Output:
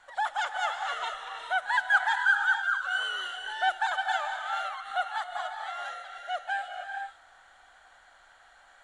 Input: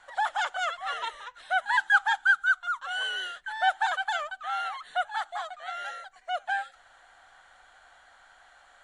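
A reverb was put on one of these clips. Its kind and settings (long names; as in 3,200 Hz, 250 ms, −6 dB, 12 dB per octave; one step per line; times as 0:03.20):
reverb whose tail is shaped and stops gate 500 ms rising, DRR 4.5 dB
level −2 dB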